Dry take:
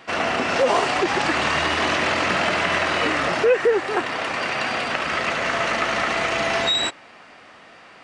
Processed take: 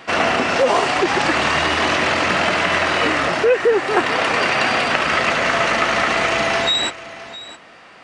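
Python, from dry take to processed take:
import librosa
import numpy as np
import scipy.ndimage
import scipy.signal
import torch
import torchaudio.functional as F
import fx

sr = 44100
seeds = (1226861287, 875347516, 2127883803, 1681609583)

y = fx.rider(x, sr, range_db=10, speed_s=0.5)
y = y + 10.0 ** (-16.5 / 20.0) * np.pad(y, (int(662 * sr / 1000.0), 0))[:len(y)]
y = y * 10.0 ** (4.0 / 20.0)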